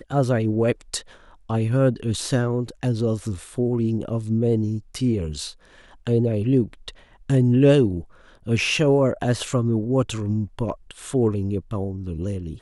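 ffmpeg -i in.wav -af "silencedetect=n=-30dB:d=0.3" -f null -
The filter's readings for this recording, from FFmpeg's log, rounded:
silence_start: 0.99
silence_end: 1.50 | silence_duration: 0.51
silence_start: 5.50
silence_end: 6.07 | silence_duration: 0.57
silence_start: 6.90
silence_end: 7.30 | silence_duration: 0.40
silence_start: 8.01
silence_end: 8.47 | silence_duration: 0.46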